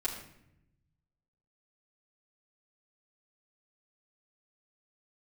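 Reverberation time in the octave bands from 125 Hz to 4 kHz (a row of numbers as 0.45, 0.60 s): 1.7, 1.2, 0.85, 0.70, 0.75, 0.55 s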